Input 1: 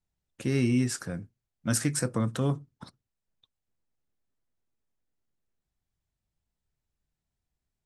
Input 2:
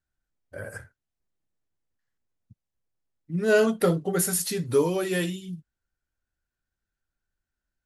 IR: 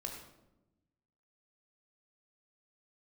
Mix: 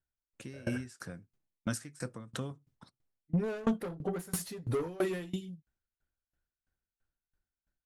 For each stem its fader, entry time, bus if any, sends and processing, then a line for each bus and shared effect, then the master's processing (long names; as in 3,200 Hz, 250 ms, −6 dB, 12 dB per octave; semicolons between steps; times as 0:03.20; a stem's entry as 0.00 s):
−5.5 dB, 0.00 s, no send, noise gate with hold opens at −52 dBFS; high-shelf EQ 2,000 Hz +11.5 dB; downward compressor 2 to 1, threshold −32 dBFS, peak gain reduction 10 dB
−2.0 dB, 0.00 s, no send, soft clipping −25 dBFS, distortion −7 dB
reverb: not used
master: high-shelf EQ 2,900 Hz −9.5 dB; automatic gain control gain up to 6.5 dB; tremolo with a ramp in dB decaying 3 Hz, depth 24 dB